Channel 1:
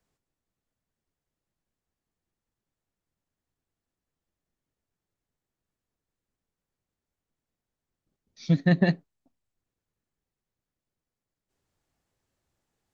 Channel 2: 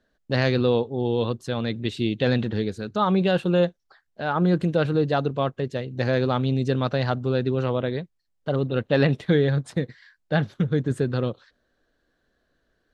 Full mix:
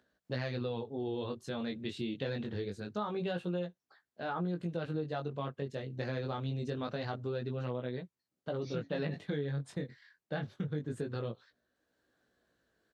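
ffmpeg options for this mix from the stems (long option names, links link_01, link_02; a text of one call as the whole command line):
ffmpeg -i stem1.wav -i stem2.wav -filter_complex "[0:a]highpass=150,acompressor=threshold=-34dB:ratio=2,adelay=250,volume=-3dB[link_01];[1:a]acompressor=mode=upward:threshold=-59dB:ratio=2.5,volume=-6dB[link_02];[link_01][link_02]amix=inputs=2:normalize=0,highpass=83,flanger=delay=16:depth=6.2:speed=0.25,acompressor=threshold=-33dB:ratio=4" out.wav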